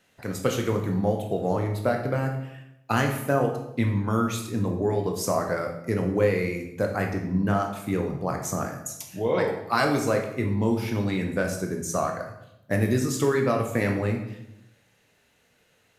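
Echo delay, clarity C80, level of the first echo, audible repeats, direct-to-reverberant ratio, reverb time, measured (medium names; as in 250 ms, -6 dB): no echo, 9.0 dB, no echo, no echo, 2.0 dB, 0.80 s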